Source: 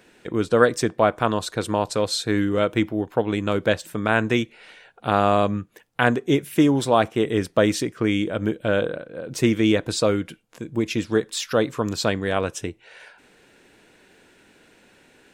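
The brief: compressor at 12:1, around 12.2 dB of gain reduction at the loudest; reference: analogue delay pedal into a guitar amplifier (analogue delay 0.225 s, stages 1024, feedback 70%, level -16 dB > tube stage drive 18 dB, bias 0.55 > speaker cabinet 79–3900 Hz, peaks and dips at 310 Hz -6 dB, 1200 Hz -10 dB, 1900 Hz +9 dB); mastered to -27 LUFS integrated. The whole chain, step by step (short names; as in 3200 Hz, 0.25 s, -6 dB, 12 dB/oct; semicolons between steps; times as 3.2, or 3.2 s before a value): compressor 12:1, threshold -24 dBFS; analogue delay 0.225 s, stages 1024, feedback 70%, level -16 dB; tube stage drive 18 dB, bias 0.55; speaker cabinet 79–3900 Hz, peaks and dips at 310 Hz -6 dB, 1200 Hz -10 dB, 1900 Hz +9 dB; gain +8.5 dB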